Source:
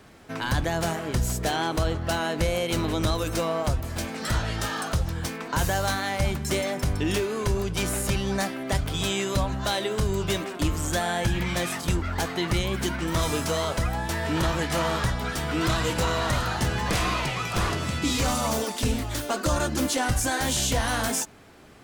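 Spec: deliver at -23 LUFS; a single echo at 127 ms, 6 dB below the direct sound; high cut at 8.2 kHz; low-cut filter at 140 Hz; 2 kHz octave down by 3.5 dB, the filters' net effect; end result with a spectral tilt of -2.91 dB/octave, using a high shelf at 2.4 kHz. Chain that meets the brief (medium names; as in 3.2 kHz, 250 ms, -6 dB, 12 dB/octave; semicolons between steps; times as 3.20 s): high-pass 140 Hz; low-pass 8.2 kHz; peaking EQ 2 kHz -9 dB; treble shelf 2.4 kHz +8.5 dB; delay 127 ms -6 dB; trim +2 dB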